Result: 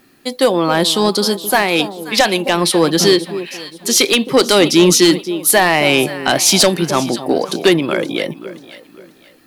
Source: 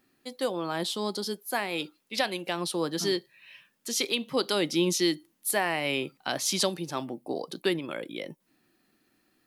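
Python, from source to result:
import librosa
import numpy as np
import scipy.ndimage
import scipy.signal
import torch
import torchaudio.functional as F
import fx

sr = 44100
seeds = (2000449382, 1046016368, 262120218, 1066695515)

y = fx.echo_alternate(x, sr, ms=265, hz=940.0, feedback_pct=56, wet_db=-12.0)
y = fx.fold_sine(y, sr, drive_db=7, ceiling_db=-10.5)
y = F.gain(torch.from_numpy(y), 6.5).numpy()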